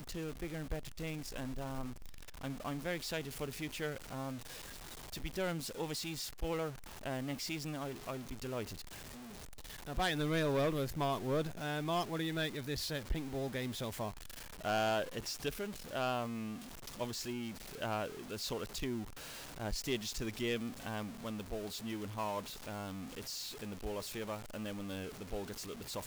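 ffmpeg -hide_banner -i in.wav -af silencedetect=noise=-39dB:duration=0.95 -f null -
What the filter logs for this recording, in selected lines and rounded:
silence_start: 8.74
silence_end: 9.88 | silence_duration: 1.14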